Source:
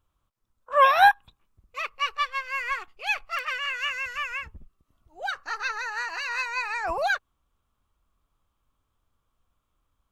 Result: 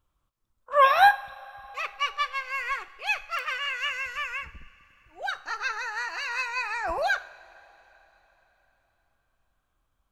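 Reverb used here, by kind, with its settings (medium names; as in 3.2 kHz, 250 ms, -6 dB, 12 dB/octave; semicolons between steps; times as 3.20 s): two-slope reverb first 0.52 s, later 4 s, from -16 dB, DRR 12 dB; trim -1 dB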